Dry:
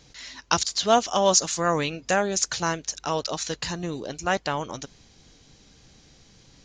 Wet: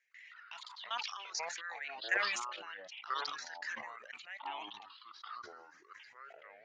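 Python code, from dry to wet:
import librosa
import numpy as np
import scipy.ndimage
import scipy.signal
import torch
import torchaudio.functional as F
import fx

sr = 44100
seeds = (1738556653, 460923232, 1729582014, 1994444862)

y = fx.spec_ripple(x, sr, per_octave=0.52, drift_hz=0.49, depth_db=15)
y = fx.dereverb_blind(y, sr, rt60_s=1.1)
y = fx.level_steps(y, sr, step_db=16)
y = fx.ladder_bandpass(y, sr, hz=2000.0, resonance_pct=60)
y = fx.echo_pitch(y, sr, ms=112, semitones=-6, count=2, db_per_echo=-6.0)
y = fx.sustainer(y, sr, db_per_s=39.0)
y = y * 10.0 ** (-1.0 / 20.0)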